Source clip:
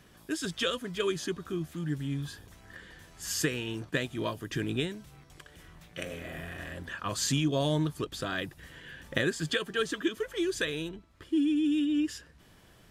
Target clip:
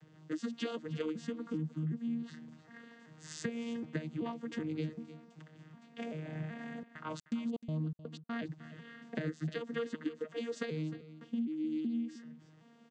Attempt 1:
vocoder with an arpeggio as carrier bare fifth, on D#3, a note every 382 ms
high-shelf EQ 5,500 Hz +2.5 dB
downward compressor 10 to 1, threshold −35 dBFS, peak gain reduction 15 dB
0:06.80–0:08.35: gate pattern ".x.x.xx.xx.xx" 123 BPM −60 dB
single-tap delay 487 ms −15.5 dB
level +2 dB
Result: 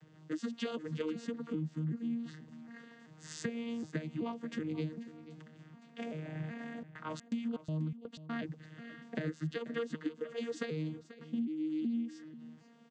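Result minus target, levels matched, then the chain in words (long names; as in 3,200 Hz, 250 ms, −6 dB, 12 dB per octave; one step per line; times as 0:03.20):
echo 180 ms late
vocoder with an arpeggio as carrier bare fifth, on D#3, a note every 382 ms
high-shelf EQ 5,500 Hz +2.5 dB
downward compressor 10 to 1, threshold −35 dBFS, peak gain reduction 15 dB
0:06.80–0:08.35: gate pattern ".x.x.xx.xx.xx" 123 BPM −60 dB
single-tap delay 307 ms −15.5 dB
level +2 dB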